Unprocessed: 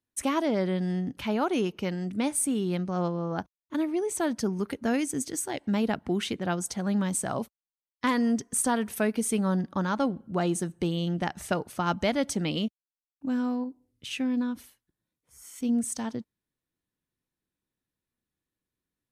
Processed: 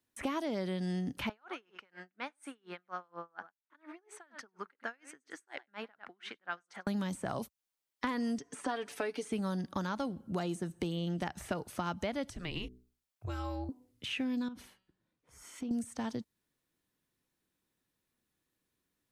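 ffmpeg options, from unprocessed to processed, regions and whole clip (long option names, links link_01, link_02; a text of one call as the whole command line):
ffmpeg -i in.wav -filter_complex "[0:a]asettb=1/sr,asplit=3[link_01][link_02][link_03];[link_01]atrim=end=1.294[link_04];[link_02]atrim=start=1.29:end=6.87,asetpts=PTS-STARTPTS,afade=type=in:duration=0.004:curve=qsin,afade=type=out:start_time=5.576:duration=0.004:curve=qsin,bandpass=frequency=1500:width_type=q:width=2,aecho=1:1:99:0.141,atrim=end_sample=246078,aeval=exprs='val(0)*pow(10,-36*(0.5-0.5*cos(2*PI*4.2*n/s))/20)':channel_layout=same[link_05];[link_03]atrim=start=6.866[link_06];[link_04][link_05]acrossfade=duration=0.004:curve1=hsin:curve2=qsin[link_07];[link_07][link_06]acrossfade=duration=0.004:curve1=qsin:curve2=hsin,asettb=1/sr,asplit=3[link_08][link_09][link_10];[link_08]atrim=end=8.384[link_11];[link_09]atrim=start=8.38:end=9.32,asetpts=PTS-STARTPTS,afade=type=in:duration=0.004:curve=qsin,afade=type=out:start_time=0.936:duration=0.004:curve=qsin,aecho=1:1:6.9:0.61,atrim=end_sample=41454,aeval=exprs='val(0)+0.001*(sin(2*PI*60*n/s)+sin(2*PI*2*60*n/s)/2+sin(2*PI*3*60*n/s)/3+sin(2*PI*4*60*n/s)/4+sin(2*PI*5*60*n/s)/5)':channel_layout=same,highpass=300,lowpass=6200[link_12];[link_10]atrim=start=9.316[link_13];[link_11][link_12]acrossfade=duration=0.004:curve1=hsin:curve2=qsin[link_14];[link_14][link_13]acrossfade=duration=0.004:curve1=qsin:curve2=hsin,asettb=1/sr,asplit=3[link_15][link_16][link_17];[link_15]atrim=end=12.304[link_18];[link_16]atrim=start=12.3:end=13.69,asetpts=PTS-STARTPTS,afade=type=in:duration=0.004:curve=qsin,afade=type=out:start_time=1.386:duration=0.004:curve=qsin,bandreject=frequency=60:width_type=h:width=6,bandreject=frequency=120:width_type=h:width=6,bandreject=frequency=180:width_type=h:width=6,bandreject=frequency=240:width_type=h:width=6,bandreject=frequency=300:width_type=h:width=6,bandreject=frequency=360:width_type=h:width=6,bandreject=frequency=420:width_type=h:width=6,bandreject=frequency=480:width_type=h:width=6,bandreject=frequency=540:width_type=h:width=6,bandreject=frequency=600:width_type=h:width=6,acompressor=threshold=-40dB:ratio=1.5:attack=3.2:release=140:knee=1:detection=peak,afreqshift=-170[link_19];[link_17]atrim=start=13.686[link_20];[link_18][link_19]acrossfade=duration=0.004:curve1=hsin:curve2=qsin[link_21];[link_21][link_20]acrossfade=duration=0.004:curve1=qsin:curve2=hsin,asettb=1/sr,asplit=3[link_22][link_23][link_24];[link_22]atrim=end=14.484[link_25];[link_23]atrim=start=14.48:end=15.71,asetpts=PTS-STARTPTS,afade=type=in:duration=0.004:curve=qsin,afade=type=out:start_time=1.226:duration=0.004:curve=qsin,aemphasis=mode=reproduction:type=75fm,bandreject=frequency=188.9:width_type=h:width=4,bandreject=frequency=377.8:width_type=h:width=4,bandreject=frequency=566.7:width_type=h:width=4,bandreject=frequency=755.6:width_type=h:width=4,bandreject=frequency=944.5:width_type=h:width=4,bandreject=frequency=1133.4:width_type=h:width=4,bandreject=frequency=1322.3:width_type=h:width=4,bandreject=frequency=1511.2:width_type=h:width=4,bandreject=frequency=1700.1:width_type=h:width=4,bandreject=frequency=1889:width_type=h:width=4,bandreject=frequency=2077.9:width_type=h:width=4,bandreject=frequency=2266.8:width_type=h:width=4,bandreject=frequency=2455.7:width_type=h:width=4,bandreject=frequency=2644.6:width_type=h:width=4,bandreject=frequency=2833.5:width_type=h:width=4,bandreject=frequency=3022.4:width_type=h:width=4,bandreject=frequency=3211.3:width_type=h:width=4,bandreject=frequency=3400.2:width_type=h:width=4,bandreject=frequency=3589.1:width_type=h:width=4,bandreject=frequency=3778:width_type=h:width=4,bandreject=frequency=3966.9:width_type=h:width=4,bandreject=frequency=4155.8:width_type=h:width=4,bandreject=frequency=4344.7:width_type=h:width=4,bandreject=frequency=4533.6:width_type=h:width=4,bandreject=frequency=4722.5:width_type=h:width=4,acompressor=threshold=-38dB:ratio=6:attack=3.2:release=140:knee=1:detection=peak[link_26];[link_24]atrim=start=15.706[link_27];[link_25][link_26]acrossfade=duration=0.004:curve1=hsin:curve2=qsin[link_28];[link_28][link_27]acrossfade=duration=0.004:curve1=qsin:curve2=hsin,acrossover=split=2700[link_29][link_30];[link_30]acompressor=threshold=-46dB:ratio=4:attack=1:release=60[link_31];[link_29][link_31]amix=inputs=2:normalize=0,lowshelf=frequency=170:gain=-6,acrossover=split=110|3500[link_32][link_33][link_34];[link_32]acompressor=threshold=-53dB:ratio=4[link_35];[link_33]acompressor=threshold=-42dB:ratio=4[link_36];[link_34]acompressor=threshold=-56dB:ratio=4[link_37];[link_35][link_36][link_37]amix=inputs=3:normalize=0,volume=6dB" out.wav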